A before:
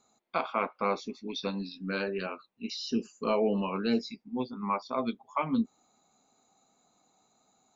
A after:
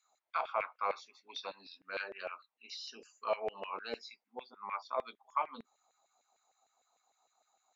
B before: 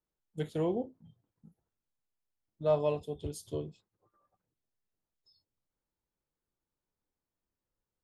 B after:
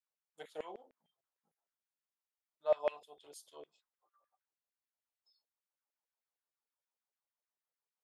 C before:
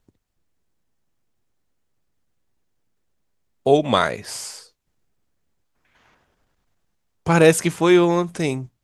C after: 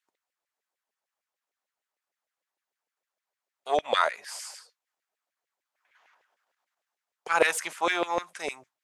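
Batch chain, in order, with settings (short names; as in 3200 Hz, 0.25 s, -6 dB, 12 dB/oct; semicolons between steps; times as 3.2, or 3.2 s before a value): added harmonics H 4 -24 dB, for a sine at -1 dBFS; LFO high-pass saw down 6.6 Hz 520–2200 Hz; gain -8 dB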